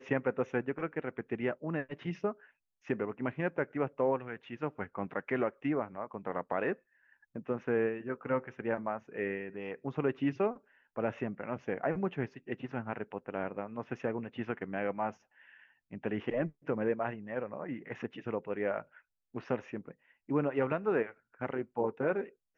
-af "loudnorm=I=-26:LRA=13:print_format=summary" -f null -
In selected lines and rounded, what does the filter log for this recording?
Input Integrated:    -35.6 LUFS
Input True Peak:     -15.8 dBTP
Input LRA:             3.3 LU
Input Threshold:     -46.0 LUFS